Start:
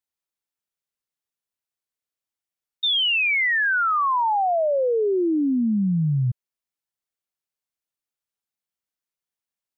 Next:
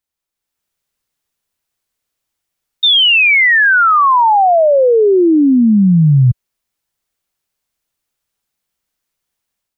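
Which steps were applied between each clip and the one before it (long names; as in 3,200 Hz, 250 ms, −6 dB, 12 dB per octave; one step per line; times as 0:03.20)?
low-shelf EQ 87 Hz +8.5 dB
in parallel at −1 dB: brickwall limiter −23 dBFS, peak gain reduction 8 dB
on the sum: automatic gain control gain up to 8 dB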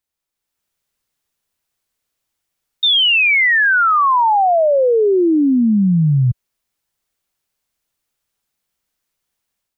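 brickwall limiter −10 dBFS, peak gain reduction 5.5 dB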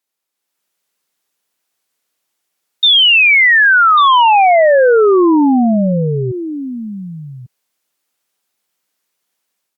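high-pass filter 230 Hz 12 dB per octave
single-tap delay 1,145 ms −12 dB
level +4.5 dB
Opus 96 kbit/s 48,000 Hz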